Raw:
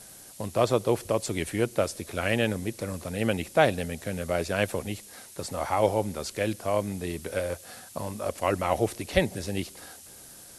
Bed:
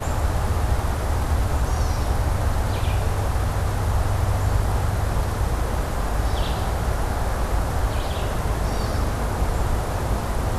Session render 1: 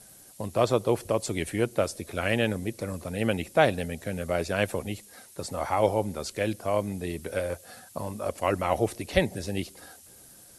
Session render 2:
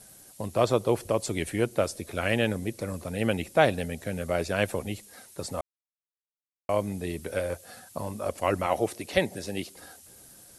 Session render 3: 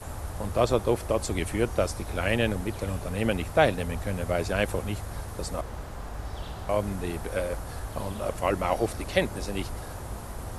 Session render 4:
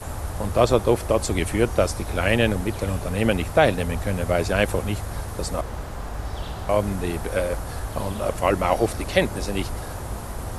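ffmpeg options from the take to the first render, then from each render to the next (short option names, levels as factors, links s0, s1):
-af "afftdn=nr=6:nf=-48"
-filter_complex "[0:a]asettb=1/sr,asplit=3[s0][s1][s2];[s0]atrim=end=8.664[s3];[s1]atrim=start=8.66:end=9.76,asetpts=PTS-STARTPTS,afade=t=in:d=0.004:c=qsin,afade=t=out:st=1.096:d=0.004:c=qsin,highpass=f=200:p=1[s4];[s2]atrim=start=9.756[s5];[s3][s4]acrossfade=d=0.004:c1=hsin:c2=qsin[s6];[s6][s5]acrossfade=d=0.004:c1=qsin:c2=hsin,asplit=3[s7][s8][s9];[s7]atrim=end=5.61,asetpts=PTS-STARTPTS,afade=t=out:st=5.606:d=0.004:c=hsin[s10];[s8]atrim=start=5.61:end=6.69,asetpts=PTS-STARTPTS,volume=0[s11];[s9]atrim=start=6.69,asetpts=PTS-STARTPTS,afade=t=in:d=0.004:c=hsin[s12];[s10][s11][s12]concat=n=3:v=0:a=1"
-filter_complex "[1:a]volume=0.211[s0];[0:a][s0]amix=inputs=2:normalize=0"
-af "volume=1.88,alimiter=limit=0.708:level=0:latency=1"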